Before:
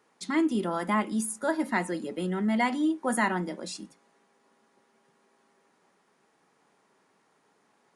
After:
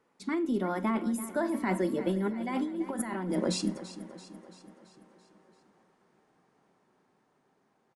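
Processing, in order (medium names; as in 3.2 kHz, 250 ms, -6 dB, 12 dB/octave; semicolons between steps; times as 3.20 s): Doppler pass-by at 3.52 s, 18 m/s, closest 14 m; tilt EQ -2 dB/octave; compressor with a negative ratio -35 dBFS, ratio -1; feedback delay 336 ms, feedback 56%, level -14 dB; Schroeder reverb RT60 0.4 s, combs from 28 ms, DRR 20 dB; trim +4.5 dB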